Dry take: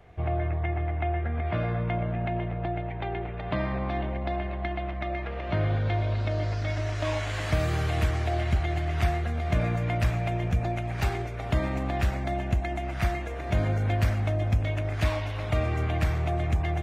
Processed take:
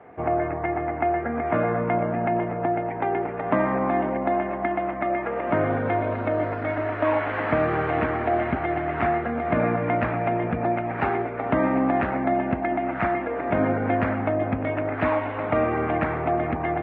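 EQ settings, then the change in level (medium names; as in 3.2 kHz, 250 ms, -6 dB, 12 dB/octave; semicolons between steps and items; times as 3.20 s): cabinet simulation 220–2100 Hz, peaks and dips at 260 Hz +9 dB, 480 Hz +4 dB, 880 Hz +5 dB, 1.3 kHz +3 dB; +7.0 dB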